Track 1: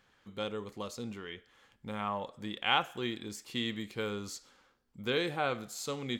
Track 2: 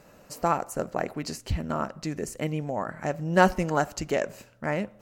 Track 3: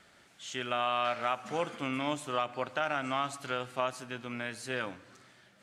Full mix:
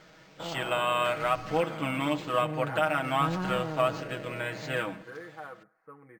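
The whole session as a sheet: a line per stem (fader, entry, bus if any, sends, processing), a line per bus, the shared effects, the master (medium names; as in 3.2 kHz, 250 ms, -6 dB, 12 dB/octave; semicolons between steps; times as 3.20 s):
-10.5 dB, 0.00 s, no send, elliptic low-pass 1.8 kHz, stop band 50 dB; tilt EQ +3 dB/octave
-7.5 dB, 0.00 s, no send, spectrogram pixelated in time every 400 ms
+2.5 dB, 0.00 s, no send, none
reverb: none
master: low-pass 7.7 kHz 12 dB/octave; comb 6.3 ms, depth 80%; decimation joined by straight lines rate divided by 4×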